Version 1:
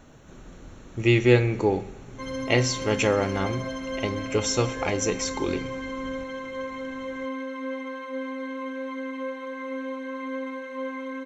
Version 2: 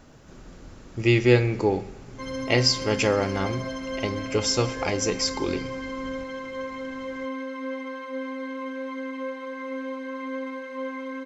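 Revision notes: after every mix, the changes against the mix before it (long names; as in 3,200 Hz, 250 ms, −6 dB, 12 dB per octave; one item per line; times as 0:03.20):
master: remove Butterworth band-reject 4,900 Hz, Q 5.1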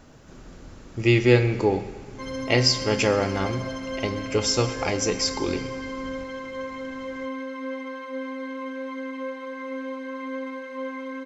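speech: send +7.0 dB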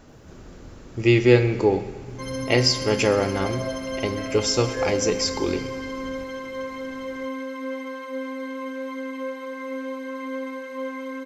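first sound +9.0 dB
second sound: remove high-frequency loss of the air 83 metres
master: add parametric band 400 Hz +3 dB 0.84 octaves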